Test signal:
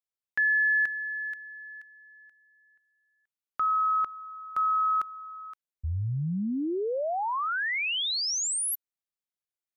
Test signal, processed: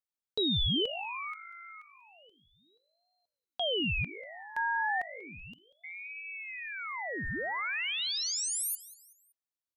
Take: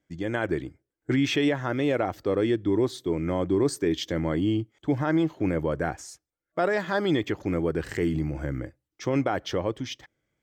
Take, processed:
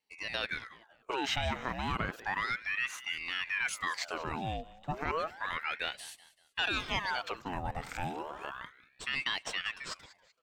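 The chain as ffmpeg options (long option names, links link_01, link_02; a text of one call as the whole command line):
ffmpeg -i in.wav -filter_complex "[0:a]lowshelf=frequency=460:gain=-11,asplit=4[link_01][link_02][link_03][link_04];[link_02]adelay=190,afreqshift=52,volume=-18dB[link_05];[link_03]adelay=380,afreqshift=104,volume=-26.2dB[link_06];[link_04]adelay=570,afreqshift=156,volume=-34.4dB[link_07];[link_01][link_05][link_06][link_07]amix=inputs=4:normalize=0,aeval=exprs='val(0)*sin(2*PI*1400*n/s+1400*0.75/0.32*sin(2*PI*0.32*n/s))':channel_layout=same,volume=-1dB" out.wav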